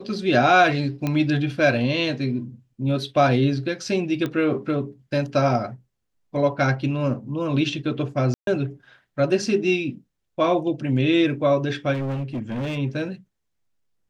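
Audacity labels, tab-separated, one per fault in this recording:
1.070000	1.070000	click −12 dBFS
4.260000	4.260000	click −15 dBFS
8.340000	8.470000	drop-out 132 ms
11.930000	12.780000	clipping −24 dBFS

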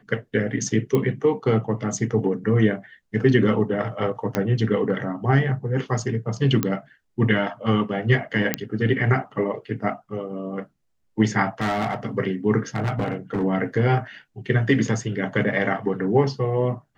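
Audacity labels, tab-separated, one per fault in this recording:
0.950000	0.950000	click −11 dBFS
4.350000	4.350000	click −9 dBFS
6.630000	6.630000	click −8 dBFS
8.540000	8.540000	click −4 dBFS
11.600000	11.950000	clipping −20 dBFS
12.750000	13.440000	clipping −20 dBFS

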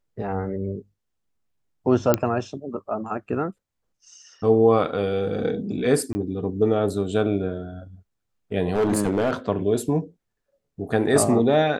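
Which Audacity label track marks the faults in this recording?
2.140000	2.140000	click −4 dBFS
6.130000	6.150000	drop-out 20 ms
8.740000	9.330000	clipping −16.5 dBFS

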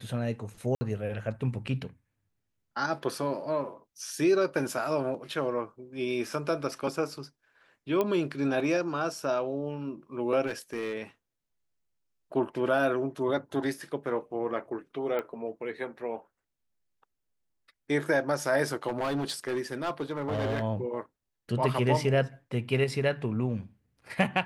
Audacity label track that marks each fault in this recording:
0.750000	0.810000	drop-out 60 ms
8.010000	8.010000	click −15 dBFS
10.460000	10.950000	clipping −28.5 dBFS
15.190000	15.190000	click −21 dBFS
18.870000	20.630000	clipping −26 dBFS

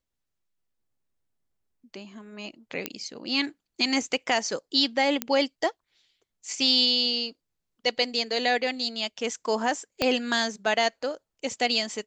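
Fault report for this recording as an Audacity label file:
2.860000	2.860000	click −11 dBFS
5.220000	5.220000	click −9 dBFS
10.020000	10.020000	click −9 dBFS

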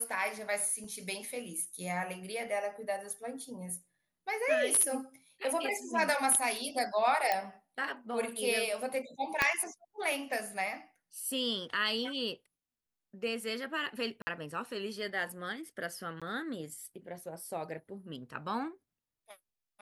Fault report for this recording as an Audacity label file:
0.840000	0.840000	drop-out 3.2 ms
7.320000	7.320000	click −15 dBFS
9.420000	9.420000	click −12 dBFS
14.220000	14.270000	drop-out 50 ms
16.200000	16.220000	drop-out 16 ms

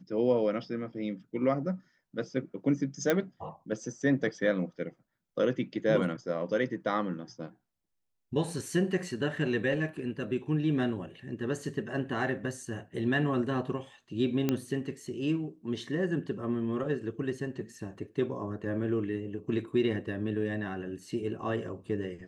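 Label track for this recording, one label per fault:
3.100000	3.100000	click −12 dBFS
14.490000	14.490000	click −14 dBFS

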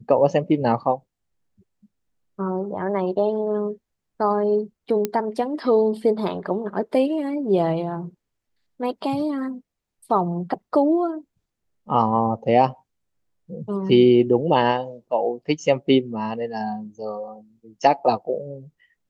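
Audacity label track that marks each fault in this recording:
5.050000	5.050000	click −9 dBFS

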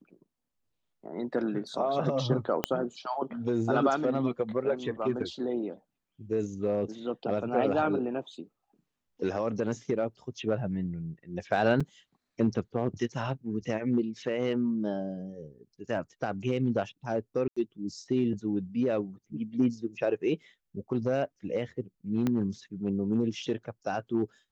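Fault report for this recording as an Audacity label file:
2.640000	2.640000	click −10 dBFS
11.800000	11.810000	drop-out 5.2 ms
17.480000	17.570000	drop-out 85 ms
22.270000	22.270000	click −16 dBFS

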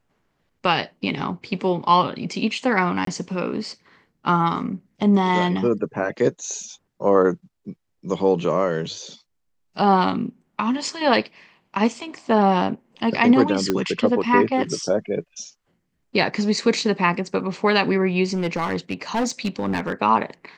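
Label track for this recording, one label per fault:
3.050000	3.070000	drop-out 23 ms
6.630000	6.630000	drop-out 2.2 ms
13.700000	13.700000	click −7 dBFS
18.330000	20.020000	clipping −17.5 dBFS

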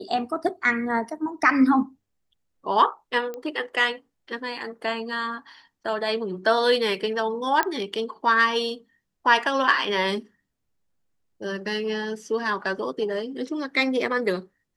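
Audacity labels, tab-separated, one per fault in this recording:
3.340000	3.340000	click −22 dBFS
7.630000	7.630000	click −9 dBFS

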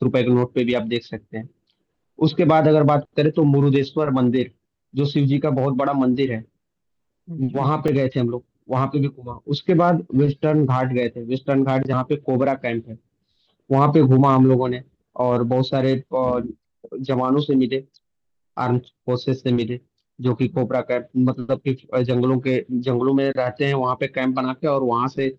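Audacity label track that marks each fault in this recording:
7.880000	7.880000	drop-out 2.1 ms

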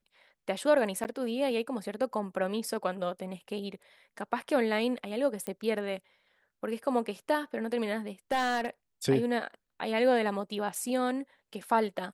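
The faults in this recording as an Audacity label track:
1.040000	1.050000	drop-out 9.4 ms
5.470000	5.470000	click −21 dBFS
8.320000	8.670000	clipping −23 dBFS
10.750000	10.750000	drop-out 3.1 ms

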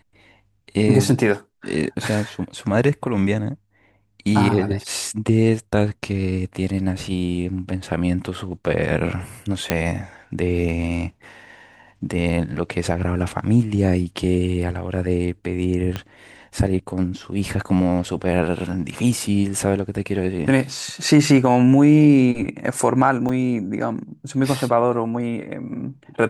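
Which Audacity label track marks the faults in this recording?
9.700000	9.700000	click −4 dBFS
15.960000	15.960000	click −12 dBFS
23.290000	23.290000	drop-out 3.4 ms

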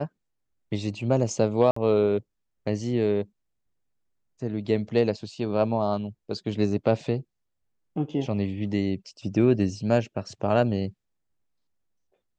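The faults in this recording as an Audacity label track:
1.710000	1.760000	drop-out 54 ms

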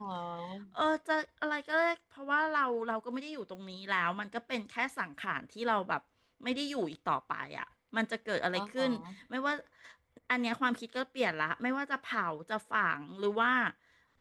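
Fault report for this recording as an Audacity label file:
3.550000	3.550000	click −35 dBFS

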